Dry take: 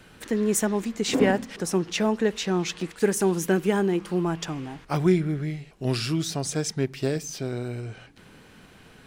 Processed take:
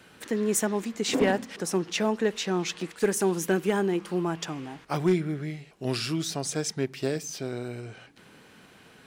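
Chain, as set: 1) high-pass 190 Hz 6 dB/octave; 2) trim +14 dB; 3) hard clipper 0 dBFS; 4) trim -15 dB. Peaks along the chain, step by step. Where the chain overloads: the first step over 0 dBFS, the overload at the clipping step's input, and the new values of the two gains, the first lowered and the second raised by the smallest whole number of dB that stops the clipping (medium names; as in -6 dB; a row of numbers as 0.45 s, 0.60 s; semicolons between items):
-9.0 dBFS, +5.0 dBFS, 0.0 dBFS, -15.0 dBFS; step 2, 5.0 dB; step 2 +9 dB, step 4 -10 dB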